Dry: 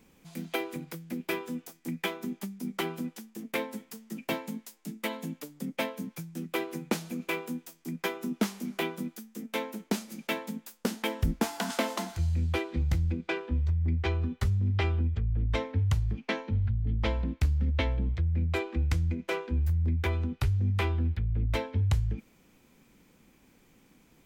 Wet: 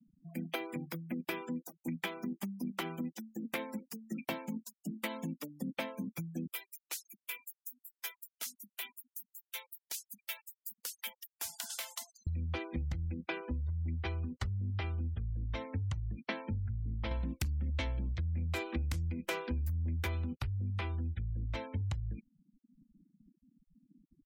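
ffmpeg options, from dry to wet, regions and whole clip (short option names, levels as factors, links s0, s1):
-filter_complex "[0:a]asettb=1/sr,asplit=3[s0][s1][s2];[s0]atrim=end=6.474[s3];[s1]atrim=start=6.47:end=12.27,asetpts=PTS-STARTPTS,afade=t=in:d=0.004:c=qsin,afade=t=out:st=5.796:d=0.004:c=qsin,aderivative,acrossover=split=280[s4][s5];[s4]adelay=220[s6];[s6][s5]amix=inputs=2:normalize=0,atrim=end_sample=255780[s7];[s2]atrim=start=12.266[s8];[s3][s7]acrossfade=d=0.004:c1=hsin:c2=qsin[s9];[s9][s8]acrossfade=d=0.004:c1=qsin:c2=hsin,asettb=1/sr,asplit=3[s10][s11][s12];[s10]atrim=end=17.114[s13];[s11]atrim=start=17.11:end=20.35,asetpts=PTS-STARTPTS,afade=t=in:d=0.004:c=qsin,afade=t=out:st=3.236:d=0.004:c=qsin,aemphasis=mode=production:type=cd,aeval=exprs='0.178*sin(PI/2*1.58*val(0)/0.178)':c=same[s14];[s12]atrim=start=20.346[s15];[s13][s14]acrossfade=d=0.004:c1=hsin:c2=qsin[s16];[s16][s15]acrossfade=d=0.004:c1=qsin:c2=hsin,afftfilt=real='re*gte(hypot(re,im),0.00562)':imag='im*gte(hypot(re,im),0.00562)':win_size=1024:overlap=0.75,equalizer=f=420:w=7:g=-9.5,acompressor=threshold=0.0178:ratio=6,volume=1.12"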